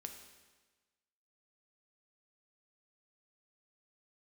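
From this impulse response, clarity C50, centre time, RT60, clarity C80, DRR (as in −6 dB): 7.0 dB, 29 ms, 1.3 s, 8.5 dB, 4.5 dB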